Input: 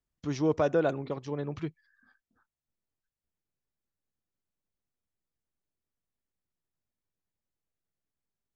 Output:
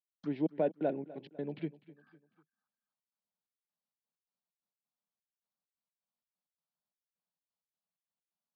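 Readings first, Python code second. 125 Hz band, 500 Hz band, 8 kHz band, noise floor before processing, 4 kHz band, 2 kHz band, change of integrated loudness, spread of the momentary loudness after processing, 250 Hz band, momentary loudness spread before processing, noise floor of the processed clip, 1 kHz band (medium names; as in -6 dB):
-9.5 dB, -6.5 dB, no reading, under -85 dBFS, -11.5 dB, -12.5 dB, -6.0 dB, 10 LU, -4.0 dB, 12 LU, under -85 dBFS, -7.5 dB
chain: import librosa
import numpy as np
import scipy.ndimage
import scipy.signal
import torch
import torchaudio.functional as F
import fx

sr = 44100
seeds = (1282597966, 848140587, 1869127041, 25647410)

y = fx.env_lowpass_down(x, sr, base_hz=1700.0, full_db=-28.5)
y = fx.env_phaser(y, sr, low_hz=350.0, high_hz=1200.0, full_db=-34.0)
y = fx.step_gate(y, sr, bpm=130, pattern='..xx.x.xx.x.xxx', floor_db=-60.0, edge_ms=4.5)
y = scipy.signal.sosfilt(scipy.signal.ellip(3, 1.0, 40, [180.0, 4500.0], 'bandpass', fs=sr, output='sos'), y)
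y = fx.echo_feedback(y, sr, ms=250, feedback_pct=44, wet_db=-19)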